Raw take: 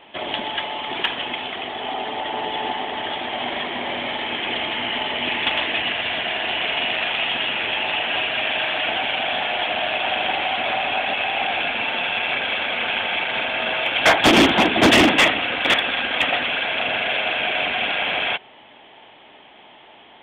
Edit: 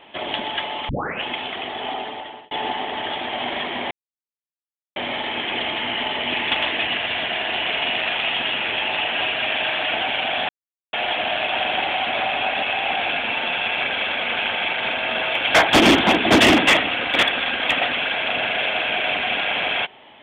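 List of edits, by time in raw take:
0:00.89: tape start 0.34 s
0:01.89–0:02.51: fade out
0:03.91: splice in silence 1.05 s
0:09.44: splice in silence 0.44 s

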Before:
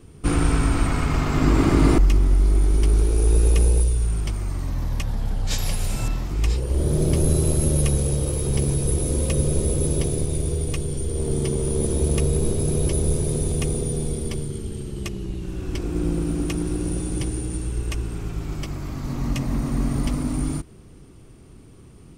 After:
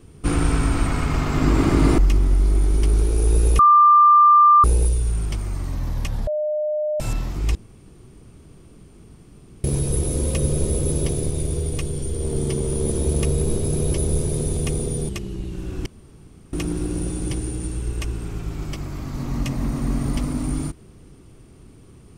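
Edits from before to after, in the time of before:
0:03.59: insert tone 1,190 Hz −8.5 dBFS 1.05 s
0:05.22–0:05.95: beep over 606 Hz −20 dBFS
0:06.50–0:08.59: fill with room tone
0:14.04–0:14.99: remove
0:15.76–0:16.43: fill with room tone

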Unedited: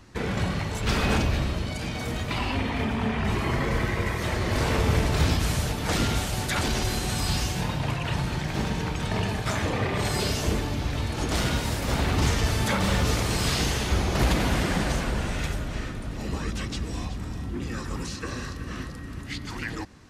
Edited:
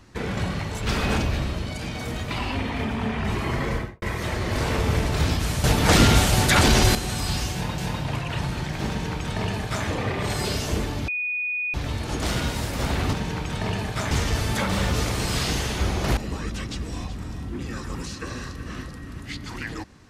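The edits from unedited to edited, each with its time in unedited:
0:03.70–0:04.02: fade out and dull
0:05.64–0:06.95: clip gain +9 dB
0:07.53–0:07.78: repeat, 2 plays
0:08.63–0:09.61: duplicate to 0:12.22
0:10.83: insert tone 2,470 Hz −24 dBFS 0.66 s
0:14.28–0:16.18: remove

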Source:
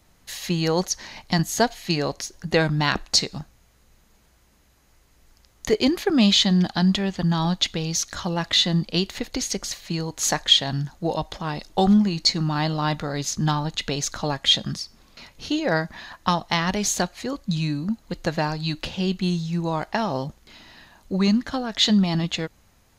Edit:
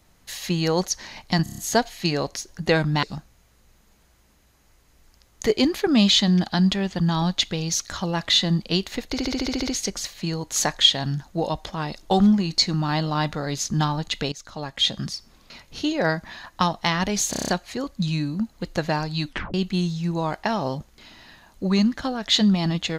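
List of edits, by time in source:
0:01.43: stutter 0.03 s, 6 plays
0:02.88–0:03.26: remove
0:09.34: stutter 0.07 s, 9 plays
0:13.99–0:14.78: fade in linear, from −18 dB
0:16.97: stutter 0.03 s, 7 plays
0:18.76: tape stop 0.27 s

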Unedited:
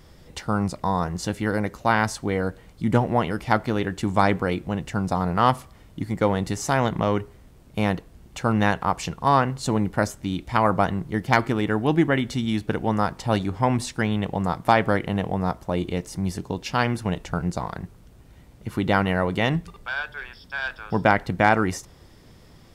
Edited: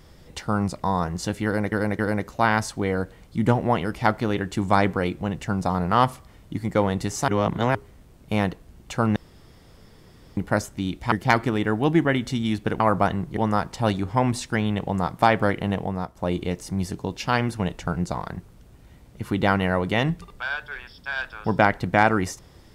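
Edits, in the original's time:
0:01.45–0:01.72: repeat, 3 plays
0:06.74–0:07.21: reverse
0:08.62–0:09.83: fill with room tone
0:10.58–0:11.15: move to 0:12.83
0:15.20–0:15.63: fade out, to −9.5 dB

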